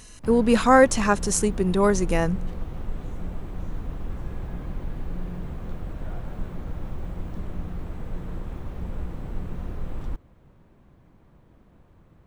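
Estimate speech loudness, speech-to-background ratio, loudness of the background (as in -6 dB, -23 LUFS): -20.5 LUFS, 15.5 dB, -36.0 LUFS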